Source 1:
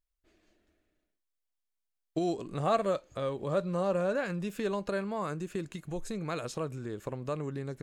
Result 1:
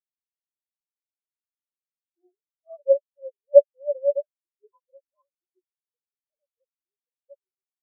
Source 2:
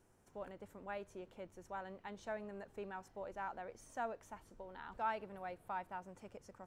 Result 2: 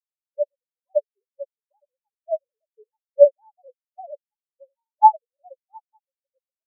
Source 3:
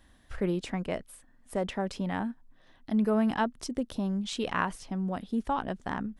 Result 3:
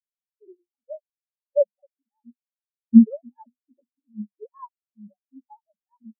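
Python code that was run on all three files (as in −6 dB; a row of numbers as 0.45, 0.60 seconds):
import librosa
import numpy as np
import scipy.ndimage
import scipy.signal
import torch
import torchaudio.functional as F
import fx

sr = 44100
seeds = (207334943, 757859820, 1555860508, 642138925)

y = fx.sine_speech(x, sr)
y = fx.low_shelf(y, sr, hz=210.0, db=-2.5)
y = fx.hum_notches(y, sr, base_hz=50, count=8)
y = fx.small_body(y, sr, hz=(570.0, 1000.0), ring_ms=40, db=10)
y = fx.spectral_expand(y, sr, expansion=4.0)
y = librosa.util.normalize(y) * 10.0 ** (-1.5 / 20.0)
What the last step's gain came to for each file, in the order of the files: +6.5, +24.0, +13.5 decibels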